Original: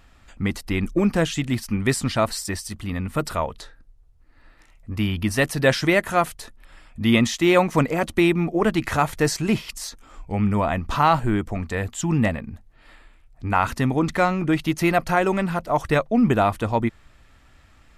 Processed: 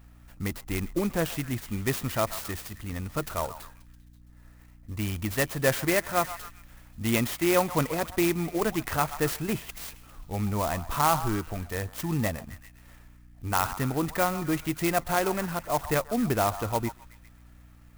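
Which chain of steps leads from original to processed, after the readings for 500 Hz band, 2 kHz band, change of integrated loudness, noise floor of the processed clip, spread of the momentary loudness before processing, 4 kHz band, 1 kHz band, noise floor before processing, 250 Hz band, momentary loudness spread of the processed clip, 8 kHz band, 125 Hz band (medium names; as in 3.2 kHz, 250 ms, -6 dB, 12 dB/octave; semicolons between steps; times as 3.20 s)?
-6.0 dB, -7.0 dB, -6.5 dB, -53 dBFS, 10 LU, -6.5 dB, -6.0 dB, -54 dBFS, -8.0 dB, 11 LU, -2.0 dB, -7.0 dB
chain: peaking EQ 220 Hz -4.5 dB 0.77 oct; hum 60 Hz, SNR 24 dB; on a send: repeats whose band climbs or falls 133 ms, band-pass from 990 Hz, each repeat 0.7 oct, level -11.5 dB; on the sum: sampling jitter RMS 0.057 ms; trim -5.5 dB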